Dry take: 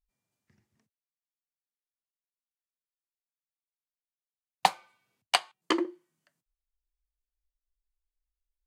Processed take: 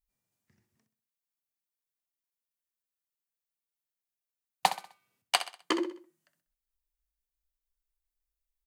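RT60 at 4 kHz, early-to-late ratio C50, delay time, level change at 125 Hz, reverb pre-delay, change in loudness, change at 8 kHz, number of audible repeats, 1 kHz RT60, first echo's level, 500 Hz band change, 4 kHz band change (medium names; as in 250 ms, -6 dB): no reverb, no reverb, 64 ms, -2.5 dB, no reverb, -2.0 dB, +1.0 dB, 3, no reverb, -12.0 dB, -2.0 dB, -1.5 dB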